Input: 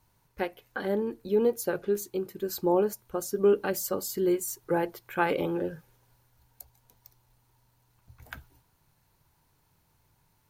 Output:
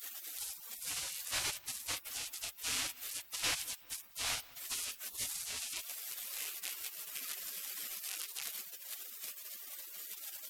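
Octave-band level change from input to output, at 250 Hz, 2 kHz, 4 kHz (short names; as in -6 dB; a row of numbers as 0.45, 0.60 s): -29.5, -4.5, +8.0 dB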